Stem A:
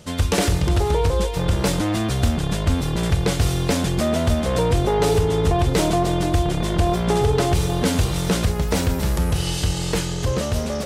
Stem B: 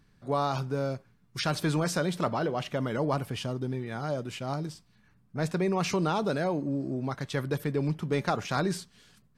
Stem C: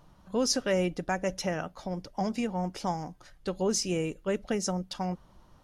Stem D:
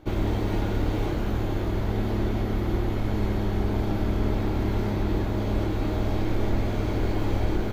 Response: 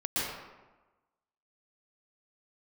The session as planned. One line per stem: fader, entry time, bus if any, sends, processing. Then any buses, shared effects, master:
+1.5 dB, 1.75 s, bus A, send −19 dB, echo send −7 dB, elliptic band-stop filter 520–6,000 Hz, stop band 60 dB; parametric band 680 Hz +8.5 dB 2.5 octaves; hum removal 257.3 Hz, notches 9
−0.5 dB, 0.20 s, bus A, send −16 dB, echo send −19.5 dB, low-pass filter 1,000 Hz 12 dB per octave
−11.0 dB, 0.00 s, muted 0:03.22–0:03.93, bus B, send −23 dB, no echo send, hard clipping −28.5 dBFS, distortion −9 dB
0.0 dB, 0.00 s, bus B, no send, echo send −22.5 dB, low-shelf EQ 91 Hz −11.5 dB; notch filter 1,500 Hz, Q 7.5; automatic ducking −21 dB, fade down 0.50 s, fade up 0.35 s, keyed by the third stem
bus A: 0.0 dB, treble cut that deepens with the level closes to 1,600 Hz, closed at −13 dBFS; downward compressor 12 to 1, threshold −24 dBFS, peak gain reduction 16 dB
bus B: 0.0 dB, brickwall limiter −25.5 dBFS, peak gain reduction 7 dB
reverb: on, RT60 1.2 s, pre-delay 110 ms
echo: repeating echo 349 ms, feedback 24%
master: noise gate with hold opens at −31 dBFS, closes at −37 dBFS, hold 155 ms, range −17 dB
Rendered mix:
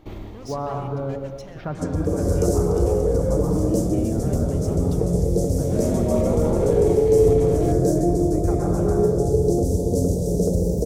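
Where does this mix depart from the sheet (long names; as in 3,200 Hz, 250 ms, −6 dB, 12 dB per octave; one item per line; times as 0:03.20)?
stem B: send −16 dB → −9.5 dB
stem D: missing low-shelf EQ 91 Hz −11.5 dB
master: missing noise gate with hold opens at −31 dBFS, closes at −37 dBFS, hold 155 ms, range −17 dB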